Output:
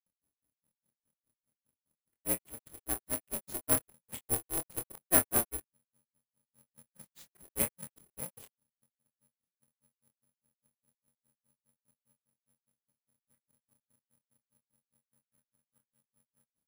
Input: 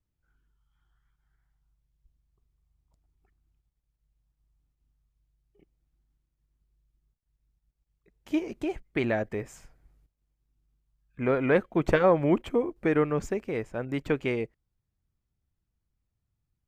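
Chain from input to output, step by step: reverse the whole clip; granulator 121 ms, grains 4.9 per s; doubling 25 ms -7 dB; careless resampling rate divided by 4×, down none, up zero stuff; polarity switched at an audio rate 180 Hz; trim -7 dB

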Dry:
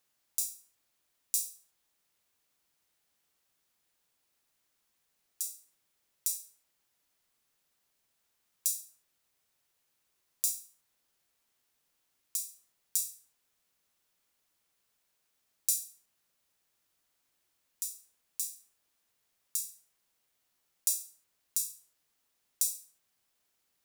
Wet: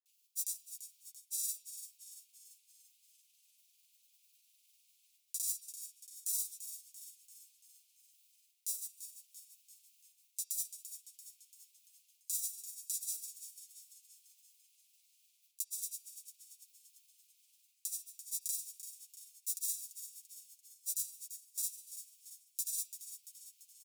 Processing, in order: steep high-pass 2.4 kHz 72 dB/octave; treble shelf 6.3 kHz +5 dB; reverse; compression 20:1, threshold -38 dBFS, peak gain reduction 20 dB; reverse; granulator, pitch spread up and down by 0 st; frequency-shifting echo 340 ms, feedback 52%, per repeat -130 Hz, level -11 dB; on a send at -7 dB: reverberation RT60 1.0 s, pre-delay 3 ms; on the sum: trim +7 dB

